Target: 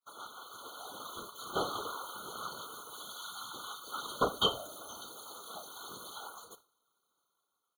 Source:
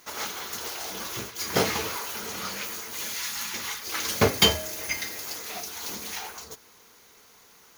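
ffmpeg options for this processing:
-filter_complex "[0:a]equalizer=f=77:w=0.42:g=-13.5,acrossover=split=4600[s0][s1];[s1]acompressor=threshold=0.0112:ratio=4:attack=1:release=60[s2];[s0][s2]amix=inputs=2:normalize=0,superequalizer=10b=1.78:15b=0.631:16b=1.78,agate=range=0.0224:threshold=0.00708:ratio=3:detection=peak,asplit=2[s3][s4];[s4]adelay=66,lowpass=f=2300:p=1,volume=0.075,asplit=2[s5][s6];[s6]adelay=66,lowpass=f=2300:p=1,volume=0.22[s7];[s3][s5][s7]amix=inputs=3:normalize=0,aeval=exprs='0.531*(cos(1*acos(clip(val(0)/0.531,-1,1)))-cos(1*PI/2))+0.0075*(cos(3*acos(clip(val(0)/0.531,-1,1)))-cos(3*PI/2))+0.00668*(cos(5*acos(clip(val(0)/0.531,-1,1)))-cos(5*PI/2))':c=same,afftfilt=real='hypot(re,im)*cos(2*PI*random(0))':imag='hypot(re,im)*sin(2*PI*random(1))':win_size=512:overlap=0.75,dynaudnorm=f=230:g=7:m=2.24,afftfilt=real='re*eq(mod(floor(b*sr/1024/1500),2),0)':imag='im*eq(mod(floor(b*sr/1024/1500),2),0)':win_size=1024:overlap=0.75,volume=0.422"

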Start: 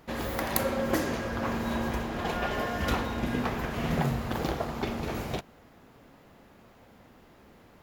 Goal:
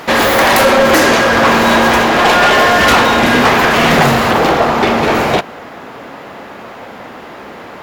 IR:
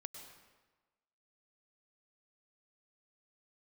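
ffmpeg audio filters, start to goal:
-filter_complex "[0:a]asetnsamples=n=441:p=0,asendcmd='4.31 lowpass f 2000',asplit=2[s0][s1];[s1]highpass=f=720:p=1,volume=31.6,asoftclip=type=tanh:threshold=0.447[s2];[s0][s2]amix=inputs=2:normalize=0,lowpass=f=5600:p=1,volume=0.501,volume=2.24"

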